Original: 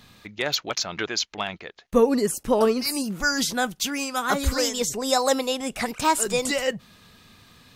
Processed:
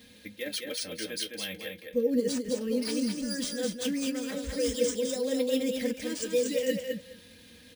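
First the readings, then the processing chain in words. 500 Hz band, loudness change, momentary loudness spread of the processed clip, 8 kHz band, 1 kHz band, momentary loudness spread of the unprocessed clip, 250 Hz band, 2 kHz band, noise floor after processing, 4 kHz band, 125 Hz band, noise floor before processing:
-5.0 dB, -6.5 dB, 8 LU, -8.5 dB, -25.0 dB, 8 LU, -3.0 dB, -12.0 dB, -54 dBFS, -8.0 dB, -9.5 dB, -54 dBFS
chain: flange 0.32 Hz, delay 8.3 ms, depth 5.8 ms, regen -53%; reverse; compression 6:1, threshold -35 dBFS, peak gain reduction 16.5 dB; reverse; high-pass 52 Hz; high-order bell 1 kHz -15.5 dB 1.2 oct; comb 3.8 ms, depth 86%; feedback delay 210 ms, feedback 17%, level -4.5 dB; careless resampling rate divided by 3×, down none, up hold; small resonant body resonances 480/1700/3200 Hz, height 10 dB, ringing for 85 ms; dynamic bell 260 Hz, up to +4 dB, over -41 dBFS, Q 1.3

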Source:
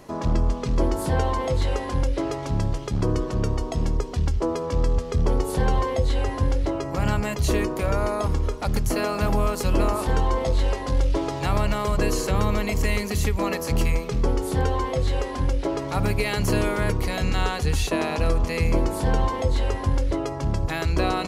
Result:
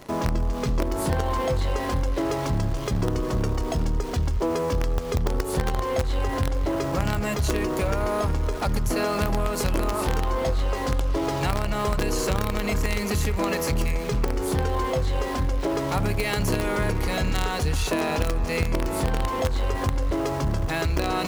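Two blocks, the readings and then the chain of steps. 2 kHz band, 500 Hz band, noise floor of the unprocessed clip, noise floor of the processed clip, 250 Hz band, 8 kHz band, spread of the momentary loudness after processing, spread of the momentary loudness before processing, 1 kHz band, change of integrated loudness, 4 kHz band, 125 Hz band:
0.0 dB, -0.5 dB, -31 dBFS, -28 dBFS, -1.0 dB, +1.0 dB, 2 LU, 3 LU, 0.0 dB, -1.0 dB, +0.5 dB, -2.0 dB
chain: in parallel at -9 dB: companded quantiser 2-bit; on the sum: band-passed feedback delay 367 ms, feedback 76%, band-pass 1.3 kHz, level -13 dB; compression, threshold -20 dBFS, peak gain reduction 8.5 dB

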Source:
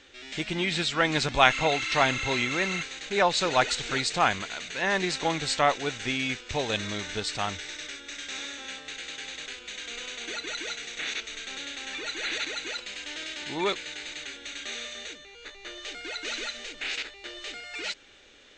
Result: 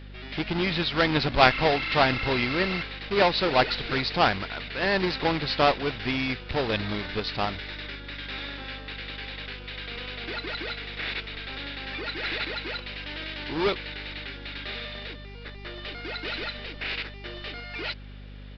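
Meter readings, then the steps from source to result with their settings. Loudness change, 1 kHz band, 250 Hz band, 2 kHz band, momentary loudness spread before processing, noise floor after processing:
+1.5 dB, +1.0 dB, +4.0 dB, +0.5 dB, 13 LU, -42 dBFS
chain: square wave that keeps the level; resampled via 11.025 kHz; hum 50 Hz, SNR 14 dB; trim -2 dB

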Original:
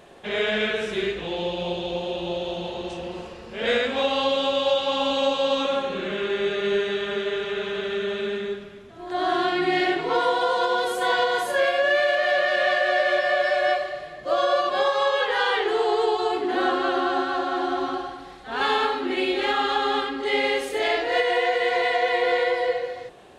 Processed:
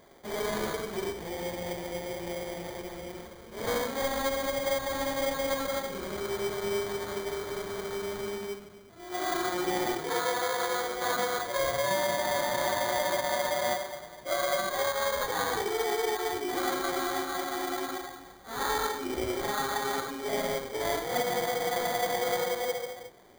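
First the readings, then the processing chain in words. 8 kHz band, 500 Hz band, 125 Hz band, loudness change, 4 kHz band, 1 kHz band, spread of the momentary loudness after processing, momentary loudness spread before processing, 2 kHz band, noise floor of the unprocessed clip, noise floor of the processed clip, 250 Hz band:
+8.5 dB, -7.5 dB, -1.5 dB, -7.5 dB, -8.5 dB, -7.0 dB, 9 LU, 9 LU, -9.5 dB, -41 dBFS, -49 dBFS, -6.5 dB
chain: sample-rate reducer 2.7 kHz, jitter 0%; trim -7.5 dB

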